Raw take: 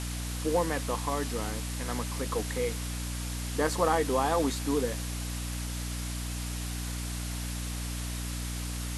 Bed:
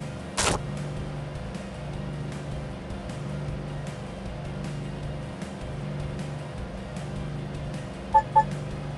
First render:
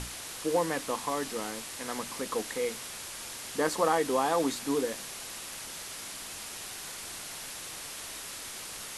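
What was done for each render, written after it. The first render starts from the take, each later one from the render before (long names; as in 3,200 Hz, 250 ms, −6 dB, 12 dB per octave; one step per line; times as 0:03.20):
mains-hum notches 60/120/180/240/300 Hz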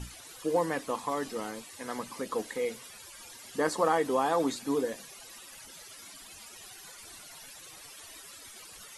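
broadband denoise 15 dB, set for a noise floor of −42 dBFS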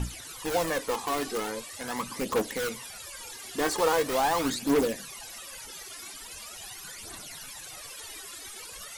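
in parallel at −3 dB: wrap-around overflow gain 28.5 dB
on the sum: phase shifter 0.42 Hz, delay 2.9 ms, feedback 49%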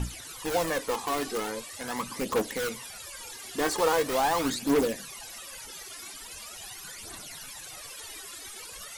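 no processing that can be heard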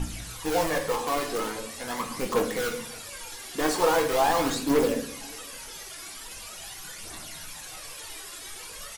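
slap from a distant wall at 97 metres, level −28 dB
rectangular room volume 110 cubic metres, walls mixed, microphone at 0.63 metres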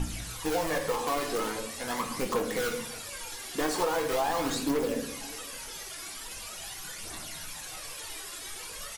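downward compressor 5 to 1, threshold −25 dBFS, peak gain reduction 7.5 dB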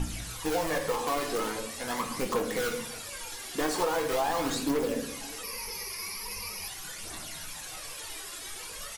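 0:05.43–0:06.68: EQ curve with evenly spaced ripples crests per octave 0.85, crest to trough 15 dB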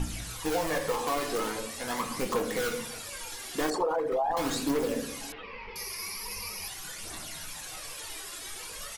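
0:03.70–0:04.37: spectral envelope exaggerated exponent 2
0:05.32–0:05.76: Butterworth low-pass 3,300 Hz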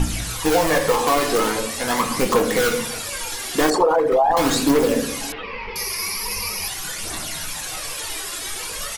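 level +11.5 dB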